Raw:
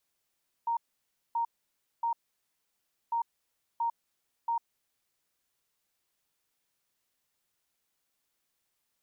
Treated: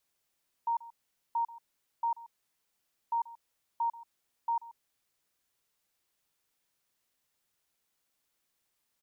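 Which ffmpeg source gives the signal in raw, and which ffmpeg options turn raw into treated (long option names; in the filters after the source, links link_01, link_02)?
-f lavfi -i "aevalsrc='0.0473*sin(2*PI*930*t)*clip(min(mod(mod(t,2.45),0.68),0.1-mod(mod(t,2.45),0.68))/0.005,0,1)*lt(mod(t,2.45),2.04)':duration=4.9:sample_rate=44100"
-filter_complex "[0:a]asplit=2[link_01][link_02];[link_02]adelay=134.1,volume=-18dB,highshelf=frequency=4000:gain=-3.02[link_03];[link_01][link_03]amix=inputs=2:normalize=0"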